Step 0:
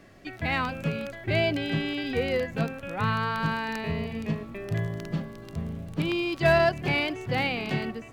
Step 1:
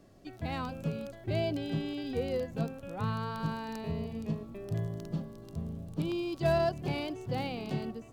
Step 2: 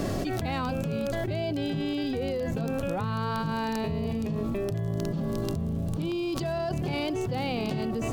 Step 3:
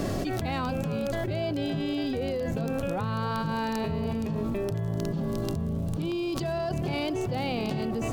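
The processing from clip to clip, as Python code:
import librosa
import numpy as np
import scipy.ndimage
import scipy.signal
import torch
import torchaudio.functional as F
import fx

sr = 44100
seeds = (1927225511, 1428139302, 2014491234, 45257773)

y1 = fx.peak_eq(x, sr, hz=2000.0, db=-13.0, octaves=1.3)
y1 = F.gain(torch.from_numpy(y1), -4.5).numpy()
y2 = fx.env_flatten(y1, sr, amount_pct=100)
y2 = F.gain(torch.from_numpy(y2), -5.0).numpy()
y3 = fx.echo_wet_bandpass(y2, sr, ms=278, feedback_pct=68, hz=790.0, wet_db=-15)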